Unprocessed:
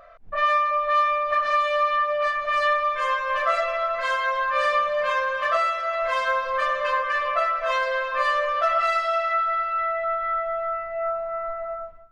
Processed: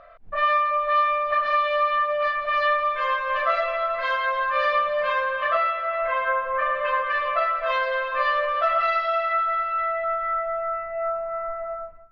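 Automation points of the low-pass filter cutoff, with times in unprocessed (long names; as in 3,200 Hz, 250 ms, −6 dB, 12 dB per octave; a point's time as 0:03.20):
low-pass filter 24 dB per octave
0:05.05 4,400 Hz
0:06.52 2,200 Hz
0:07.17 4,200 Hz
0:09.84 4,200 Hz
0:10.43 2,600 Hz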